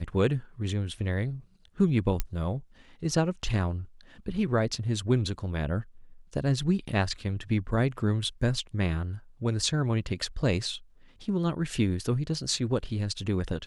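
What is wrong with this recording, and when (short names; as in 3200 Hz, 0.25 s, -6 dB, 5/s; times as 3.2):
2.2 pop -13 dBFS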